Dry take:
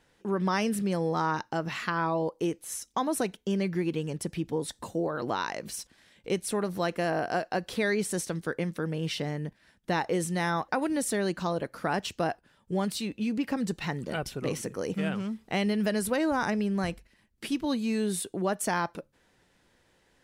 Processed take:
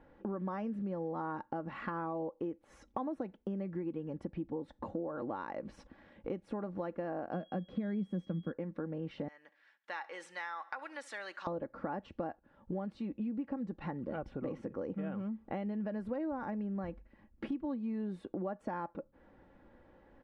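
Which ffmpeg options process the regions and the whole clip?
ffmpeg -i in.wav -filter_complex "[0:a]asettb=1/sr,asplit=3[link_01][link_02][link_03];[link_01]atrim=end=7.334[link_04];[link_02]atrim=start=7.33:end=8.52,asetpts=PTS-STARTPTS,afade=type=in:duration=0.004:curve=qsin,afade=type=out:start_time=1.186:duration=0.004:curve=qsin,equalizer=frequency=180:width=1.6:gain=14.5,bandreject=frequency=900:width=6.7,aeval=exprs='val(0)+0.0141*sin(2*PI*3300*n/s)':channel_layout=same[link_05];[link_03]atrim=start=8.516[link_06];[link_04][link_05]acrossfade=duration=0.004:curve1=hsin:curve2=qsin[link_07];[link_07][link_06]acrossfade=duration=0.004:curve1=qsin:curve2=hsin,asettb=1/sr,asplit=3[link_08][link_09][link_10];[link_08]atrim=end=9.284[link_11];[link_09]atrim=start=9.28:end=11.47,asetpts=PTS-STARTPTS,afade=type=in:duration=0.004:curve=qsin,afade=type=out:start_time=2.186:duration=0.004:curve=qsin,asuperpass=centerf=3800:order=4:qfactor=0.55,aemphasis=mode=production:type=50fm,aecho=1:1:69|138|207|276:0.0794|0.0437|0.024|0.0132,atrim=end_sample=96579[link_12];[link_10]atrim=start=11.466[link_13];[link_11][link_12]acrossfade=duration=0.004:curve1=hsin:curve2=qsin[link_14];[link_14][link_13]acrossfade=duration=0.004:curve1=qsin:curve2=hsin,lowpass=1100,aecho=1:1:3.6:0.44,acompressor=threshold=-45dB:ratio=4,volume=6.5dB" out.wav

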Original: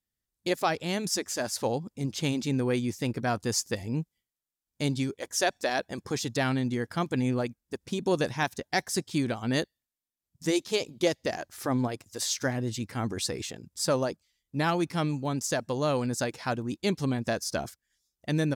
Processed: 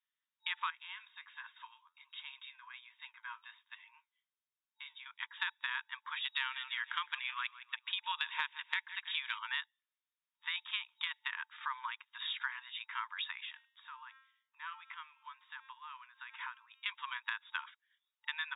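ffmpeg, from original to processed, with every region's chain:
ffmpeg -i in.wav -filter_complex "[0:a]asettb=1/sr,asplit=3[link_01][link_02][link_03];[link_01]atrim=end=0.704[link_04];[link_02]atrim=start=0.7:end=5.06,asetpts=PTS-STARTPTS,afade=type=in:duration=0.004:curve=qsin,afade=type=out:start_time=4.356:duration=0.004:curve=qsin,aecho=1:1:1.9:0.37,atrim=end_sample=192276,acompressor=threshold=-37dB:ratio=3:attack=3.2:release=140:knee=1:detection=peak,flanger=delay=5.4:depth=7.4:regen=-66:speed=1.3:shape=triangular[link_05];[link_03]atrim=start=5.056[link_06];[link_04][link_05]acrossfade=duration=0.004:curve1=hsin:curve2=qsin[link_07];[link_07][link_06]acrossfade=duration=0.004:curve1=qsin:curve2=hsin,asettb=1/sr,asplit=3[link_08][link_09][link_10];[link_08]atrim=end=6.244[link_11];[link_09]atrim=start=6.24:end=9.39,asetpts=PTS-STARTPTS,afade=type=in:duration=0.004:curve=qsin,afade=type=out:start_time=3.146:duration=0.004:curve=qsin,equalizer=frequency=3200:width_type=o:width=1.6:gain=8,aecho=1:1:161|322|483:0.126|0.0529|0.0222,atrim=end_sample=138915[link_12];[link_10]atrim=start=9.386[link_13];[link_11][link_12]acrossfade=duration=0.004:curve1=hsin:curve2=qsin[link_14];[link_14][link_13]acrossfade=duration=0.004:curve1=qsin:curve2=hsin,asettb=1/sr,asplit=3[link_15][link_16][link_17];[link_15]atrim=end=13.404[link_18];[link_16]atrim=start=13.4:end=16.86,asetpts=PTS-STARTPTS,afade=type=in:duration=0.004:curve=qsin,afade=type=out:start_time=3.456:duration=0.004:curve=qsin,equalizer=frequency=5200:width_type=o:width=0.86:gain=-9,bandreject=frequency=266.4:width_type=h:width=4,bandreject=frequency=532.8:width_type=h:width=4,bandreject=frequency=799.2:width_type=h:width=4,bandreject=frequency=1065.6:width_type=h:width=4,bandreject=frequency=1332:width_type=h:width=4,bandreject=frequency=1598.4:width_type=h:width=4,bandreject=frequency=1864.8:width_type=h:width=4,bandreject=frequency=2131.2:width_type=h:width=4,bandreject=frequency=2397.6:width_type=h:width=4,bandreject=frequency=2664:width_type=h:width=4,bandreject=frequency=2930.4:width_type=h:width=4,bandreject=frequency=3196.8:width_type=h:width=4,bandreject=frequency=3463.2:width_type=h:width=4,bandreject=frequency=3729.6:width_type=h:width=4,bandreject=frequency=3996:width_type=h:width=4,bandreject=frequency=4262.4:width_type=h:width=4,bandreject=frequency=4528.8:width_type=h:width=4,bandreject=frequency=4795.2:width_type=h:width=4,bandreject=frequency=5061.6:width_type=h:width=4,bandreject=frequency=5328:width_type=h:width=4,bandreject=frequency=5594.4:width_type=h:width=4,bandreject=frequency=5860.8:width_type=h:width=4,bandreject=frequency=6127.2:width_type=h:width=4,bandreject=frequency=6393.6:width_type=h:width=4,bandreject=frequency=6660:width_type=h:width=4,bandreject=frequency=6926.4:width_type=h:width=4,bandreject=frequency=7192.8:width_type=h:width=4,bandreject=frequency=7459.2:width_type=h:width=4,bandreject=frequency=7725.6:width_type=h:width=4,bandreject=frequency=7992:width_type=h:width=4,bandreject=frequency=8258.4:width_type=h:width=4,bandreject=frequency=8524.8:width_type=h:width=4,bandreject=frequency=8791.2:width_type=h:width=4,bandreject=frequency=9057.6:width_type=h:width=4,bandreject=frequency=9324:width_type=h:width=4,bandreject=frequency=9590.4:width_type=h:width=4,bandreject=frequency=9856.8:width_type=h:width=4,bandreject=frequency=10123.2:width_type=h:width=4,bandreject=frequency=10389.6:width_type=h:width=4,acompressor=threshold=-37dB:ratio=12:attack=3.2:release=140:knee=1:detection=peak[link_19];[link_17]atrim=start=16.856[link_20];[link_18][link_19]acrossfade=duration=0.004:curve1=hsin:curve2=qsin[link_21];[link_21][link_20]acrossfade=duration=0.004:curve1=qsin:curve2=hsin,afftfilt=real='re*between(b*sr/4096,890,3800)':imag='im*between(b*sr/4096,890,3800)':win_size=4096:overlap=0.75,acompressor=threshold=-36dB:ratio=6,volume=2.5dB" out.wav

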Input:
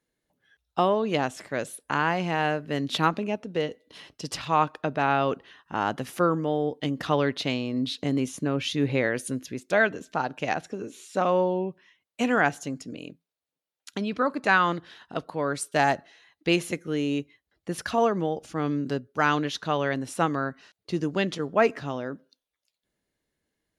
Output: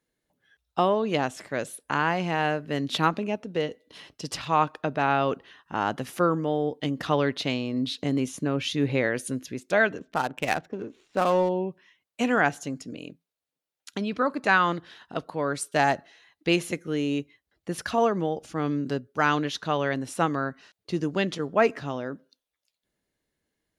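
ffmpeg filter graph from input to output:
ffmpeg -i in.wav -filter_complex "[0:a]asettb=1/sr,asplit=3[link_01][link_02][link_03];[link_01]atrim=end=9.984[link_04];[link_02]atrim=start=9.98:end=11.49,asetpts=PTS-STARTPTS,afade=type=in:duration=0.004:curve=qsin,afade=type=out:start_time=1.506:duration=0.004:curve=qsin,highshelf=frequency=2200:gain=6,adynamicsmooth=sensitivity=7:basefreq=910[link_05];[link_03]atrim=start=11.486[link_06];[link_04][link_05]acrossfade=duration=0.004:curve1=hsin:curve2=qsin[link_07];[link_07][link_06]acrossfade=duration=0.004:curve1=qsin:curve2=hsin" out.wav

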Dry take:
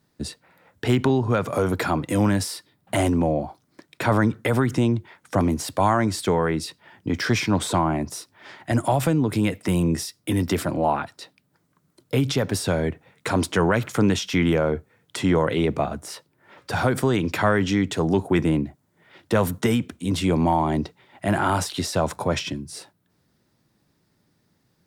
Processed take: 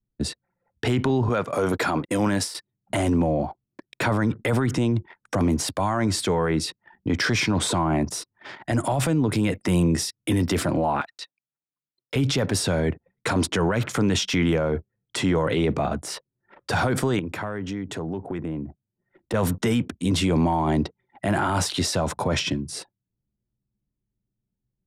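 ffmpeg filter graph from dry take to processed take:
ffmpeg -i in.wav -filter_complex "[0:a]asettb=1/sr,asplit=3[link_01][link_02][link_03];[link_01]atrim=end=1.294[link_04];[link_02]atrim=start=1.29:end=2.55,asetpts=PTS-STARTPTS,afade=type=in:duration=0.004:curve=qsin,afade=type=out:start_time=1.256:duration=0.004:curve=qsin,agate=range=-33dB:threshold=-26dB:ratio=3:release=100:detection=peak,lowshelf=frequency=150:gain=-11.5[link_05];[link_03]atrim=start=2.546[link_06];[link_04][link_05]acrossfade=duration=0.004:curve1=hsin:curve2=qsin[link_07];[link_07][link_06]acrossfade=duration=0.004:curve1=qsin:curve2=hsin,asettb=1/sr,asplit=3[link_08][link_09][link_10];[link_08]atrim=end=11.014[link_11];[link_09]atrim=start=11.01:end=12.16,asetpts=PTS-STARTPTS,afade=type=in:duration=0.004:curve=qsin,afade=type=out:start_time=1.146:duration=0.004:curve=qsin,acrusher=bits=7:mode=log:mix=0:aa=0.000001,bandpass=frequency=3400:width_type=q:width=0.53[link_12];[link_10]atrim=start=12.156[link_13];[link_11][link_12]acrossfade=duration=0.004:curve1=hsin:curve2=qsin[link_14];[link_14][link_13]acrossfade=duration=0.004:curve1=qsin:curve2=hsin,asettb=1/sr,asplit=3[link_15][link_16][link_17];[link_15]atrim=end=17.194[link_18];[link_16]atrim=start=17.19:end=19.34,asetpts=PTS-STARTPTS,afade=type=in:duration=0.004:curve=qsin,afade=type=out:start_time=2.146:duration=0.004:curve=qsin,equalizer=frequency=4100:width=0.57:gain=-6.5,acompressor=threshold=-33dB:ratio=4:attack=3.2:release=140:knee=1:detection=peak[link_19];[link_17]atrim=start=19.336[link_20];[link_18][link_19]acrossfade=duration=0.004:curve1=hsin:curve2=qsin[link_21];[link_21][link_20]acrossfade=duration=0.004:curve1=qsin:curve2=hsin,anlmdn=0.0631,lowpass=11000,alimiter=limit=-18.5dB:level=0:latency=1:release=15,volume=4dB" out.wav

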